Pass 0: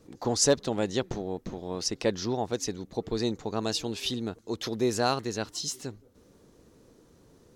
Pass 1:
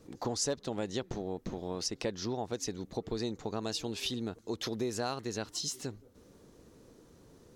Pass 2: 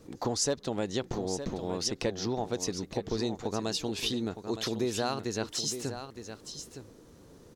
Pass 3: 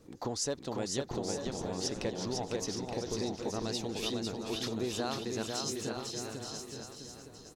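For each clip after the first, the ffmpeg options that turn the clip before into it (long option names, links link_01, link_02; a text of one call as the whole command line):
ffmpeg -i in.wav -af "acompressor=threshold=-33dB:ratio=3" out.wav
ffmpeg -i in.wav -af "aecho=1:1:914:0.316,volume=3.5dB" out.wav
ffmpeg -i in.wav -af "aecho=1:1:500|875|1156|1367|1525:0.631|0.398|0.251|0.158|0.1,volume=-5dB" out.wav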